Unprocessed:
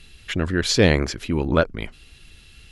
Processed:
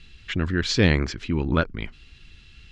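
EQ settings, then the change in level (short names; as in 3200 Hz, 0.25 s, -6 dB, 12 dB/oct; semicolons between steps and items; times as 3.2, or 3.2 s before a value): LPF 8900 Hz 24 dB/oct; air absorption 91 m; bell 590 Hz -8 dB 1.2 oct; 0.0 dB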